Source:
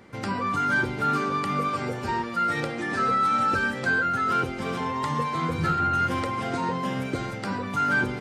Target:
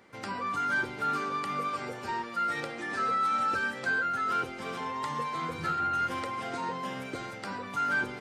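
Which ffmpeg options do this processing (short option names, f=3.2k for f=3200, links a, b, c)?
-af "lowshelf=f=260:g=-11.5,volume=-4.5dB"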